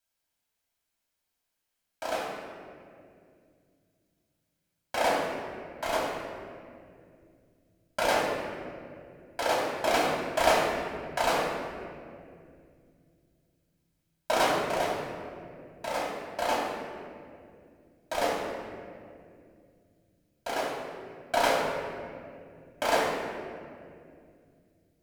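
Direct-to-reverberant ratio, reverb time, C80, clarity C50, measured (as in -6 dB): -5.0 dB, 2.3 s, 2.5 dB, 1.0 dB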